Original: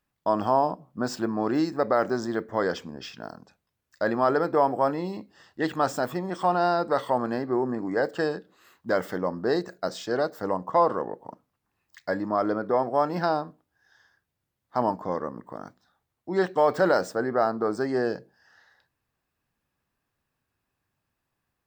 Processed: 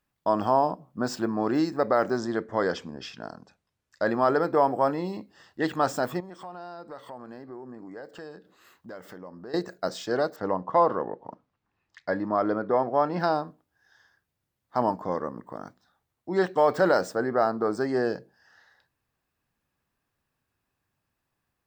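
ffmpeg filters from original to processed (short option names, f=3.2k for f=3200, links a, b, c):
-filter_complex "[0:a]asettb=1/sr,asplit=3[a][b][c];[a]atrim=end=2.194[d];[b]atrim=start=2.19:end=4.1,asetpts=PTS-STARTPTS,afade=t=in:d=0.004:c=qsin,afade=t=out:st=1.906:d=0.004:c=qsin,lowpass=9.8k[e];[c]atrim=start=4.096[f];[d][e]acrossfade=d=0.004:c1=hsin:c2=qsin[g];[g][f]acrossfade=d=0.004:c1=qsin:c2=hsin,asettb=1/sr,asplit=3[h][i][j];[h]atrim=end=6.204[k];[i]atrim=start=6.2:end=9.54,asetpts=PTS-STARTPTS,afade=t=in:d=0.004:c=qsin,afade=t=out:st=3.336:d=0.004:c=qsin,acompressor=threshold=-46dB:ratio=2.5:attack=3.2:release=140:knee=1:detection=peak[l];[j]atrim=start=9.536[m];[k][l]acrossfade=d=0.004:c1=hsin:c2=qsin[n];[n][m]acrossfade=d=0.004:c1=qsin:c2=hsin,asettb=1/sr,asplit=3[o][p][q];[o]atrim=end=10.364[r];[p]atrim=start=10.36:end=13.2,asetpts=PTS-STARTPTS,afade=t=in:d=0.004:c=qsin,afade=t=out:st=2.836:d=0.004:c=qsin,lowpass=4.3k[s];[q]atrim=start=13.196[t];[r][s]acrossfade=d=0.004:c1=hsin:c2=qsin[u];[u][t]acrossfade=d=0.004:c1=qsin:c2=hsin"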